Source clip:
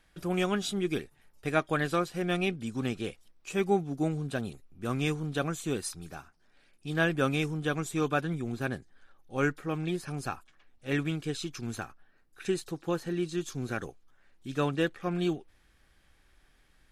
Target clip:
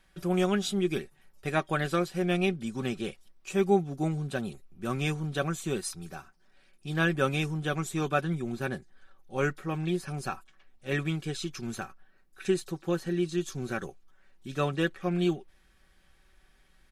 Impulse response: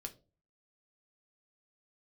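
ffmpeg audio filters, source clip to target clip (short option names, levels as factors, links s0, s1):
-af "aecho=1:1:5.3:0.47"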